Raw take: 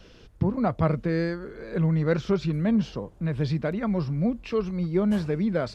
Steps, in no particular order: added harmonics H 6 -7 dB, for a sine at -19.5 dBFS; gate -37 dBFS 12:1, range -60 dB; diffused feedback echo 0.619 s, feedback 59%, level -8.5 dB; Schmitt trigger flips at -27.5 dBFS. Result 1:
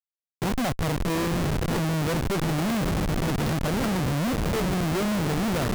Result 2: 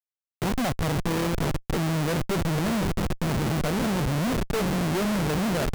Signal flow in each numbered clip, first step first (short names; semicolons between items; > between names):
added harmonics > gate > diffused feedback echo > Schmitt trigger; gate > diffused feedback echo > added harmonics > Schmitt trigger